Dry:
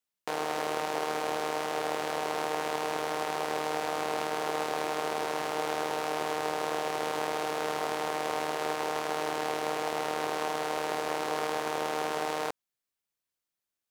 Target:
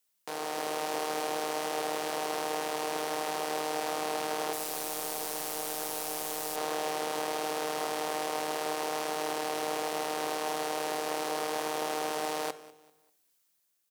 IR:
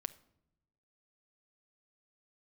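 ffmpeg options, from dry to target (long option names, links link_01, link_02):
-filter_complex "[0:a]asettb=1/sr,asplit=3[link_01][link_02][link_03];[link_01]atrim=end=4.534[link_04];[link_02]atrim=start=4.53:end=6.56,asetpts=PTS-STARTPTS,afade=type=in:duration=0.004:curve=qsin,afade=type=out:start_time=2.026:duration=0.004:curve=qsin,aemphasis=mode=production:type=75kf[link_05];[link_03]atrim=start=6.556[link_06];[link_04][link_05]acrossfade=duration=0.004:curve1=hsin:curve2=qsin[link_07];[link_07][link_06]acrossfade=duration=0.004:curve1=qsin:curve2=hsin,highpass=130,highshelf=frequency=4900:gain=9.5,acontrast=71,alimiter=limit=-19.5dB:level=0:latency=1:release=116,dynaudnorm=framelen=110:gausssize=9:maxgain=4dB,aecho=1:1:196|392|588:0.1|0.034|0.0116[link_08];[1:a]atrim=start_sample=2205[link_09];[link_08][link_09]afir=irnorm=-1:irlink=0"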